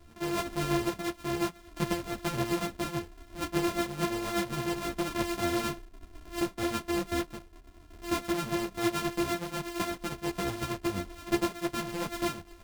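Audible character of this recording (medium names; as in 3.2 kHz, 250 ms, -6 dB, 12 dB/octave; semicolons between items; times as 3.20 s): a buzz of ramps at a fixed pitch in blocks of 128 samples; tremolo triangle 8.5 Hz, depth 55%; a shimmering, thickened sound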